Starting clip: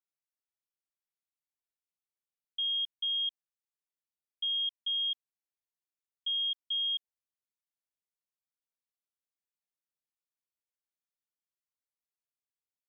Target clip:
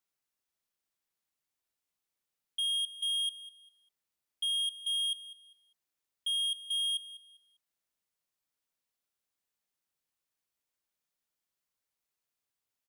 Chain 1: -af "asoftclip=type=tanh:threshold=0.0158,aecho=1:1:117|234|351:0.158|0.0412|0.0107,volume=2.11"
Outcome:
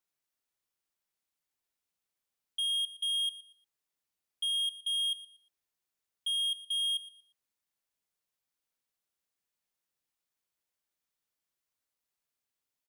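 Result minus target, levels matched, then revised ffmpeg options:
echo 82 ms early
-af "asoftclip=type=tanh:threshold=0.0158,aecho=1:1:199|398|597:0.158|0.0412|0.0107,volume=2.11"

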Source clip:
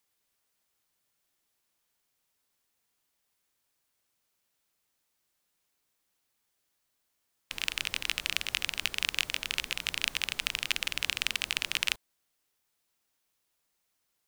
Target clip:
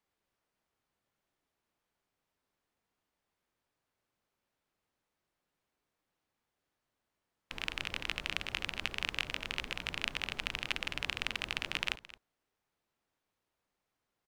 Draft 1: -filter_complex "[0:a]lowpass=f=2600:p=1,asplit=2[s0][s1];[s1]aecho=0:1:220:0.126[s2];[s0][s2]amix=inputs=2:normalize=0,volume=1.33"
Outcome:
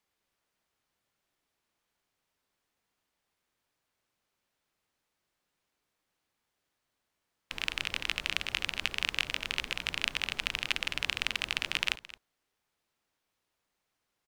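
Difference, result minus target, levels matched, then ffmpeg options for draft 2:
1 kHz band -2.5 dB
-filter_complex "[0:a]lowpass=f=1200:p=1,asplit=2[s0][s1];[s1]aecho=0:1:220:0.126[s2];[s0][s2]amix=inputs=2:normalize=0,volume=1.33"

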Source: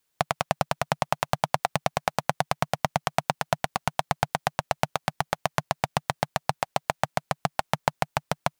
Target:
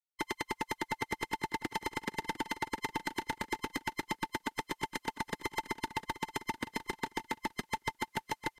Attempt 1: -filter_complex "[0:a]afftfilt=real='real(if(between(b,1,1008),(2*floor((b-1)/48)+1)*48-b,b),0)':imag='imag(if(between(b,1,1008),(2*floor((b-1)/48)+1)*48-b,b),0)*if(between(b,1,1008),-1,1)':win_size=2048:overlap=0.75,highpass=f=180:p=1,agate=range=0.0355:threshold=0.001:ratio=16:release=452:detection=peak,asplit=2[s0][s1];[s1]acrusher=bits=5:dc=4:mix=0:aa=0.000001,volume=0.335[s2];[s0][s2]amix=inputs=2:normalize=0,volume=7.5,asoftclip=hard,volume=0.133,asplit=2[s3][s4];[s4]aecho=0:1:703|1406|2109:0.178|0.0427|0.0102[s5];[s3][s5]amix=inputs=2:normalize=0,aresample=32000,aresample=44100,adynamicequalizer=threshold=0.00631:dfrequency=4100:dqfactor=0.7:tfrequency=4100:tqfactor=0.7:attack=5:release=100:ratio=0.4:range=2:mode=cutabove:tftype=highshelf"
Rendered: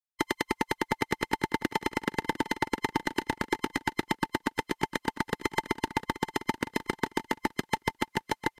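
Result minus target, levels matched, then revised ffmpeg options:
overload inside the chain: distortion -5 dB
-filter_complex "[0:a]afftfilt=real='real(if(between(b,1,1008),(2*floor((b-1)/48)+1)*48-b,b),0)':imag='imag(if(between(b,1,1008),(2*floor((b-1)/48)+1)*48-b,b),0)*if(between(b,1,1008),-1,1)':win_size=2048:overlap=0.75,highpass=f=180:p=1,agate=range=0.0355:threshold=0.001:ratio=16:release=452:detection=peak,asplit=2[s0][s1];[s1]acrusher=bits=5:dc=4:mix=0:aa=0.000001,volume=0.335[s2];[s0][s2]amix=inputs=2:normalize=0,volume=25.1,asoftclip=hard,volume=0.0398,asplit=2[s3][s4];[s4]aecho=0:1:703|1406|2109:0.178|0.0427|0.0102[s5];[s3][s5]amix=inputs=2:normalize=0,aresample=32000,aresample=44100,adynamicequalizer=threshold=0.00631:dfrequency=4100:dqfactor=0.7:tfrequency=4100:tqfactor=0.7:attack=5:release=100:ratio=0.4:range=2:mode=cutabove:tftype=highshelf"

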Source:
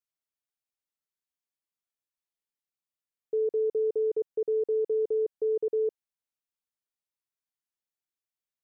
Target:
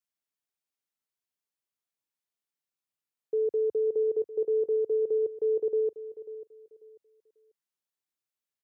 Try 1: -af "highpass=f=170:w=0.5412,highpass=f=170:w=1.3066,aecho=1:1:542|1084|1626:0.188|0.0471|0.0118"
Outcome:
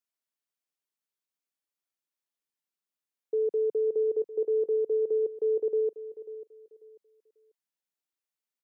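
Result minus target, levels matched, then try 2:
125 Hz band -5.5 dB
-af "highpass=f=79:w=0.5412,highpass=f=79:w=1.3066,aecho=1:1:542|1084|1626:0.188|0.0471|0.0118"

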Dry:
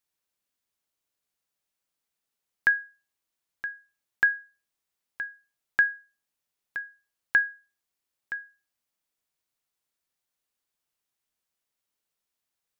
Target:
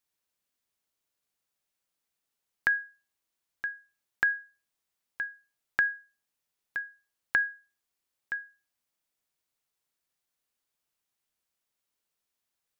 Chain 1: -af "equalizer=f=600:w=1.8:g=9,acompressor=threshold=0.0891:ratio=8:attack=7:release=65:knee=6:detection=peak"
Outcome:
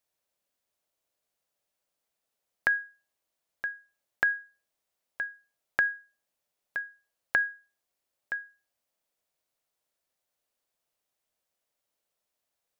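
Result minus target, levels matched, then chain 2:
500 Hz band +6.0 dB
-af "acompressor=threshold=0.0891:ratio=8:attack=7:release=65:knee=6:detection=peak"

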